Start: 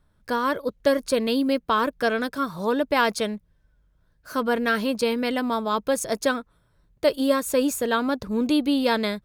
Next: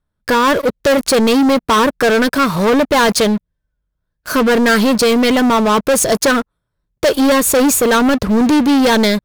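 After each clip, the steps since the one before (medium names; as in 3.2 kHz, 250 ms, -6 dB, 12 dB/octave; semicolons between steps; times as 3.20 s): waveshaping leveller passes 5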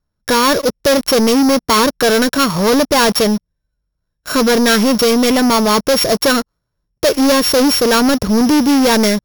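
sorted samples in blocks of 8 samples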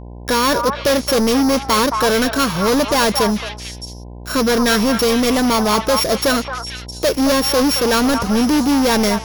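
repeats whose band climbs or falls 221 ms, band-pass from 1 kHz, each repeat 1.4 oct, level -2.5 dB; mains buzz 60 Hz, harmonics 17, -30 dBFS -6 dB/octave; trim -3.5 dB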